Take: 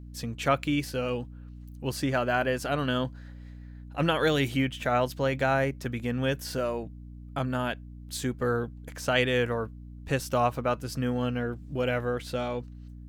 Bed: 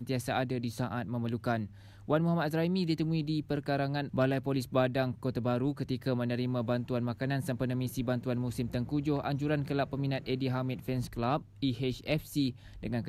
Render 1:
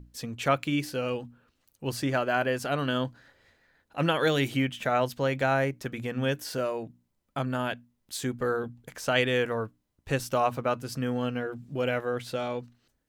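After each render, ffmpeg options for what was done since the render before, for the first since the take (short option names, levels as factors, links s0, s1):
-af "bandreject=f=60:t=h:w=6,bandreject=f=120:t=h:w=6,bandreject=f=180:t=h:w=6,bandreject=f=240:t=h:w=6,bandreject=f=300:t=h:w=6"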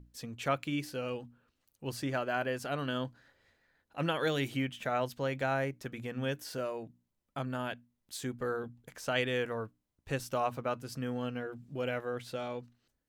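-af "volume=0.473"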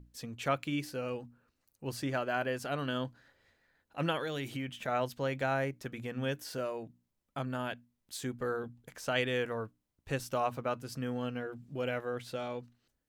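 -filter_complex "[0:a]asettb=1/sr,asplit=3[s0][s1][s2];[s0]atrim=end=0.914[s3];[s1]atrim=start=0.91:end=1.9,asetpts=PTS-STARTPTS,afade=t=in:d=0.004:c=qsin,afade=t=out:st=0.986:d=0.004:c=qsin,equalizer=f=3200:t=o:w=0.37:g=-7.5[s4];[s2]atrim=start=1.896[s5];[s3][s4]acrossfade=d=0.004:c1=hsin:c2=qsin[s6];[s6][s5]acrossfade=d=0.004:c1=qsin:c2=hsin,asettb=1/sr,asplit=3[s7][s8][s9];[s7]atrim=end=4.184[s10];[s8]atrim=start=4.18:end=4.88,asetpts=PTS-STARTPTS,afade=t=in:d=0.004:c=qsin,afade=t=out:st=0.696:d=0.004:c=qsin,acompressor=threshold=0.0224:ratio=6:attack=3.2:release=140:knee=1:detection=peak[s11];[s9]atrim=start=4.876[s12];[s10][s11]acrossfade=d=0.004:c1=hsin:c2=qsin[s13];[s13][s12]acrossfade=d=0.004:c1=qsin:c2=hsin"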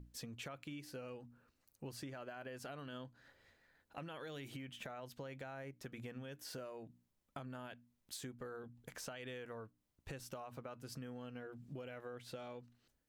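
-af "alimiter=level_in=1.41:limit=0.0631:level=0:latency=1:release=59,volume=0.708,acompressor=threshold=0.00562:ratio=10"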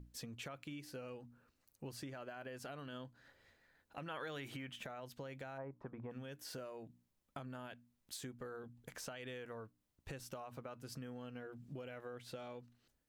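-filter_complex "[0:a]asettb=1/sr,asplit=3[s0][s1][s2];[s0]atrim=end=4.064[s3];[s1]atrim=start=4.06:end=4.76,asetpts=PTS-STARTPTS,afade=t=in:d=0.004:c=qsin,afade=t=out:st=0.696:d=0.004:c=qsin,equalizer=f=1300:w=0.67:g=7[s4];[s2]atrim=start=4.756[s5];[s3][s4]acrossfade=d=0.004:c1=hsin:c2=qsin[s6];[s6][s5]acrossfade=d=0.004:c1=qsin:c2=hsin,asplit=3[s7][s8][s9];[s7]afade=t=out:st=5.57:d=0.02[s10];[s8]lowpass=f=1000:t=q:w=3.8,afade=t=in:st=5.57:d=0.02,afade=t=out:st=6.1:d=0.02[s11];[s9]afade=t=in:st=6.1:d=0.02[s12];[s10][s11][s12]amix=inputs=3:normalize=0"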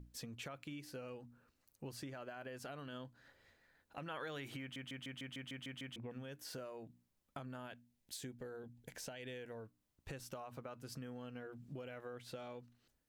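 -filter_complex "[0:a]asettb=1/sr,asplit=3[s0][s1][s2];[s0]atrim=end=7.794[s3];[s1]atrim=start=7.79:end=9.66,asetpts=PTS-STARTPTS,afade=t=in:d=0.004:c=qsin,afade=t=out:st=1.866:d=0.004:c=qsin,equalizer=f=1200:t=o:w=0.36:g=-12.5[s4];[s2]atrim=start=9.656[s5];[s3][s4]acrossfade=d=0.004:c1=hsin:c2=qsin[s6];[s6][s5]acrossfade=d=0.004:c1=qsin:c2=hsin,asplit=10[s7][s8][s9][s10][s11][s12][s13][s14][s15][s16];[s7]atrim=end=4.762[s17];[s8]atrim=start=4.608:end=4.762[s18];[s9]atrim=start=4.608:end=4.762[s19];[s10]atrim=start=4.608:end=4.762[s20];[s11]atrim=start=4.608:end=4.762[s21];[s12]atrim=start=4.608:end=4.762[s22];[s13]atrim=start=4.608:end=4.762[s23];[s14]atrim=start=4.608:end=4.762[s24];[s15]atrim=start=4.608:end=4.762[s25];[s16]atrim=start=5.958[s26];[s17][s18]acrossfade=d=0.004:c1=hsin:c2=hsin[s27];[s27][s19]acrossfade=d=0.004:c1=hsin:c2=hsin[s28];[s28][s20]acrossfade=d=0.004:c1=hsin:c2=hsin[s29];[s29][s21]acrossfade=d=0.004:c1=hsin:c2=hsin[s30];[s30][s22]acrossfade=d=0.004:c1=hsin:c2=hsin[s31];[s31][s23]acrossfade=d=0.004:c1=hsin:c2=hsin[s32];[s32][s24]acrossfade=d=0.004:c1=hsin:c2=hsin[s33];[s33][s25]acrossfade=d=0.004:c1=hsin:c2=hsin[s34];[s34][s26]acrossfade=d=0.004:c1=hsin:c2=hsin"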